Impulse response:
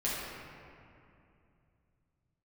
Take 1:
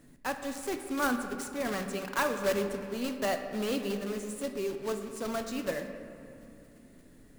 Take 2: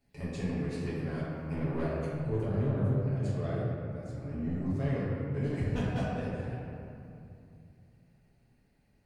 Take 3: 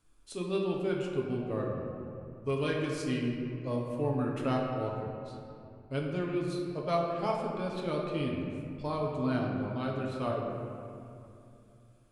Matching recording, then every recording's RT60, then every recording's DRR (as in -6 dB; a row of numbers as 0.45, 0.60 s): 2; 2.8, 2.6, 2.6 s; 5.5, -9.0, -2.0 dB